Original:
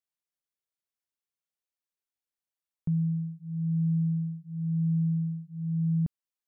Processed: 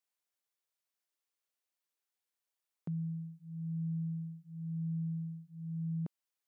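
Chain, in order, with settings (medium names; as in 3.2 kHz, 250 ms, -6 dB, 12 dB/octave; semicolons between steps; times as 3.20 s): high-pass 330 Hz 12 dB/octave; trim +2.5 dB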